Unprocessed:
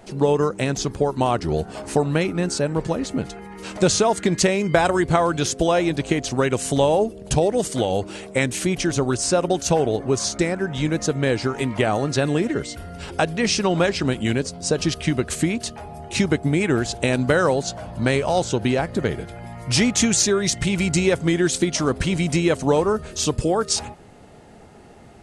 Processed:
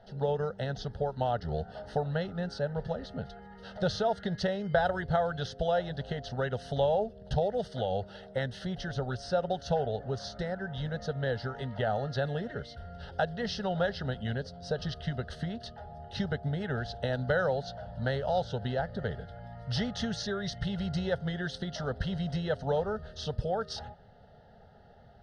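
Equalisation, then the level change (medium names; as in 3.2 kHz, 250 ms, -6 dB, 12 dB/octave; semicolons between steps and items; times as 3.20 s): distance through air 140 m; peaking EQ 2.3 kHz -12 dB 0.24 oct; static phaser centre 1.6 kHz, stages 8; -6.5 dB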